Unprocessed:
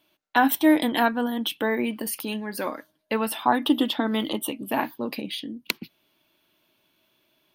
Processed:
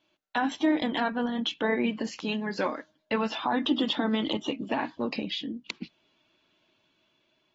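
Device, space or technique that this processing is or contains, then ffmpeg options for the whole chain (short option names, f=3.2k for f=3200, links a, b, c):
low-bitrate web radio: -af "dynaudnorm=f=680:g=5:m=10dB,alimiter=limit=-12dB:level=0:latency=1:release=89,volume=-5dB" -ar 44100 -c:a aac -b:a 24k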